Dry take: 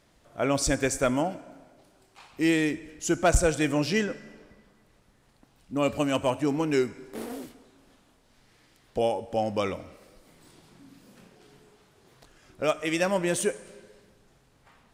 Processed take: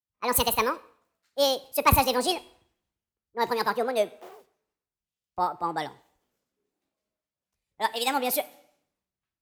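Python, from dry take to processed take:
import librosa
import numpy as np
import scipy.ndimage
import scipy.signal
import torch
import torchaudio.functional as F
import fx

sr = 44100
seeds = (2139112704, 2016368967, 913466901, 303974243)

y = fx.speed_glide(x, sr, from_pct=178, to_pct=139)
y = fx.highpass(y, sr, hz=150.0, slope=6)
y = fx.band_widen(y, sr, depth_pct=100)
y = y * librosa.db_to_amplitude(-1.0)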